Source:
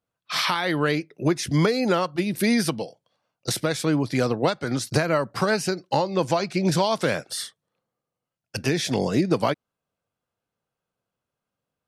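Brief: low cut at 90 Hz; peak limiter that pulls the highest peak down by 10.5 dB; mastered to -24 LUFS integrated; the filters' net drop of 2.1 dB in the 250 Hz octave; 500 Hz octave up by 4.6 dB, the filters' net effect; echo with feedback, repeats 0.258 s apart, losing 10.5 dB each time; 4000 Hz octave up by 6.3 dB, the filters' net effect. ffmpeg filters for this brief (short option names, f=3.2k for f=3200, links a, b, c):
-af "highpass=90,equalizer=f=250:t=o:g=-5.5,equalizer=f=500:t=o:g=7,equalizer=f=4k:t=o:g=7.5,alimiter=limit=-14.5dB:level=0:latency=1,aecho=1:1:258|516|774:0.299|0.0896|0.0269,volume=1dB"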